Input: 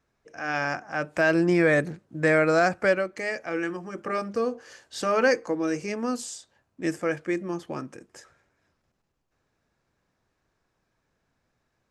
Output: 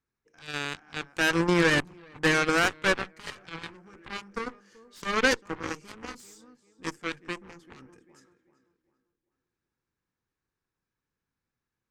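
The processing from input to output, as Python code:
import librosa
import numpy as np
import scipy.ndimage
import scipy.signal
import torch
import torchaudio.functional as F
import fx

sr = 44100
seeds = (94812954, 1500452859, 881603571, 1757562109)

y = fx.echo_tape(x, sr, ms=389, feedback_pct=40, wet_db=-13.0, lp_hz=2500.0, drive_db=7.0, wow_cents=39)
y = fx.cheby_harmonics(y, sr, harmonics=(4, 7), levels_db=(-18, -15), full_scale_db=-9.5)
y = fx.peak_eq(y, sr, hz=640.0, db=-11.5, octaves=0.45)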